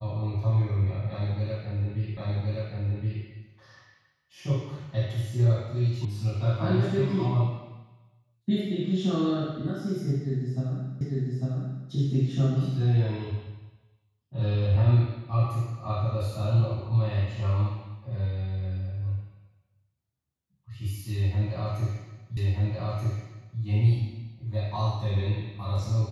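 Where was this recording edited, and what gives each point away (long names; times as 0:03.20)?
0:02.17: the same again, the last 1.07 s
0:06.05: cut off before it has died away
0:11.01: the same again, the last 0.85 s
0:22.37: the same again, the last 1.23 s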